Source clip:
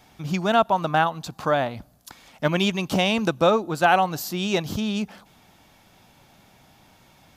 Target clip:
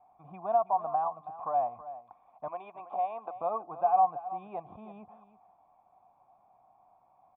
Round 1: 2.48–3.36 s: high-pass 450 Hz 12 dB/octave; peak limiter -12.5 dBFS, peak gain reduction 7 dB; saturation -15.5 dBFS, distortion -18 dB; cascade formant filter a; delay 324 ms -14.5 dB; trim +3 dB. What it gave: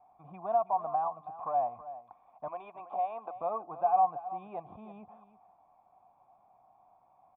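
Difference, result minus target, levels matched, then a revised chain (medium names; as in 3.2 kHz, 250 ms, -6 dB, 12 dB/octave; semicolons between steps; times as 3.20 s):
saturation: distortion +17 dB
2.48–3.36 s: high-pass 450 Hz 12 dB/octave; peak limiter -12.5 dBFS, peak gain reduction 7 dB; saturation -5.5 dBFS, distortion -36 dB; cascade formant filter a; delay 324 ms -14.5 dB; trim +3 dB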